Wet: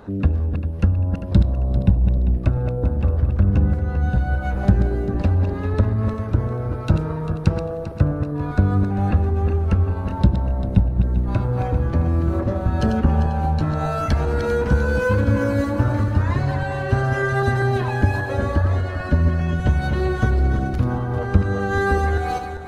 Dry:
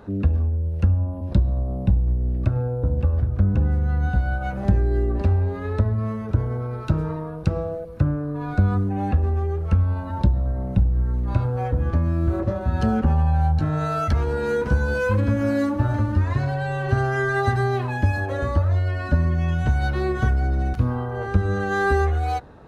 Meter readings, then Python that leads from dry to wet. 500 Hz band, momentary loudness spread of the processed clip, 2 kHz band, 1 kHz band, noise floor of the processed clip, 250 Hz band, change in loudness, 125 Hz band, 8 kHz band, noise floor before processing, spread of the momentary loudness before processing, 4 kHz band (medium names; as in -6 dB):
+2.0 dB, 4 LU, +1.5 dB, +1.5 dB, -28 dBFS, +3.0 dB, +2.0 dB, +2.0 dB, no reading, -31 dBFS, 4 LU, +3.0 dB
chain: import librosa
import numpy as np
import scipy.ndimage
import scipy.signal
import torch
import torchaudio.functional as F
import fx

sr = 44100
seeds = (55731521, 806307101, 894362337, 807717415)

y = fx.reverse_delay_fb(x, sr, ms=198, feedback_pct=57, wet_db=-7.0)
y = fx.hpss(y, sr, part='percussive', gain_db=5)